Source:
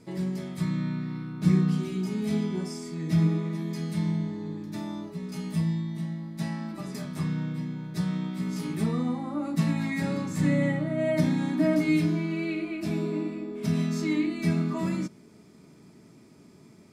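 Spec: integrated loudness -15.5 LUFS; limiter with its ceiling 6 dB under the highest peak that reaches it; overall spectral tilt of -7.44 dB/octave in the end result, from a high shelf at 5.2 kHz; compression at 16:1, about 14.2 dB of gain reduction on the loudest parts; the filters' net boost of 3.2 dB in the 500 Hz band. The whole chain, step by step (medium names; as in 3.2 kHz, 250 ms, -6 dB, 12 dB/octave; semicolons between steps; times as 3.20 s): peaking EQ 500 Hz +4.5 dB; treble shelf 5.2 kHz -6 dB; compression 16:1, threshold -30 dBFS; trim +21 dB; peak limiter -7 dBFS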